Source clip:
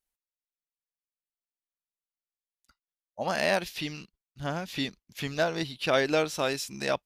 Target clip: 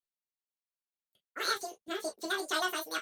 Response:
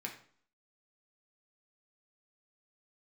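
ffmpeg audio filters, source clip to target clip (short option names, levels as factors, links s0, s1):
-filter_complex "[1:a]atrim=start_sample=2205,atrim=end_sample=3969,asetrate=33957,aresample=44100[s0];[0:a][s0]afir=irnorm=-1:irlink=0,asetrate=103194,aresample=44100,volume=0.473"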